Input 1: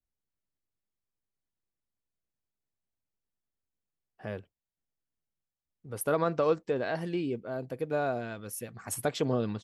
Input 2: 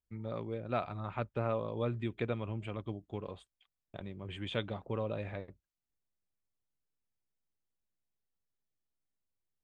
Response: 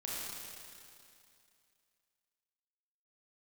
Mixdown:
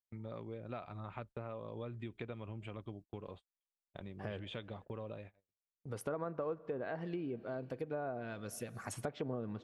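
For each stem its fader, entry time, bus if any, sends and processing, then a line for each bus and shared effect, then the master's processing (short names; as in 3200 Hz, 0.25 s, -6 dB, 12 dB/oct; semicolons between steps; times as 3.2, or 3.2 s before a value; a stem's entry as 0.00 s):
+0.5 dB, 0.00 s, send -22 dB, dry
5.11 s -2 dB -> 5.35 s -12.5 dB, 0.00 s, no send, compressor 1.5:1, threshold -42 dBFS, peak gain reduction 5.5 dB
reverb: on, RT60 2.5 s, pre-delay 27 ms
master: gate -50 dBFS, range -32 dB; treble ducked by the level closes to 1500 Hz, closed at -25.5 dBFS; compressor 3:1, threshold -40 dBFS, peak gain reduction 14.5 dB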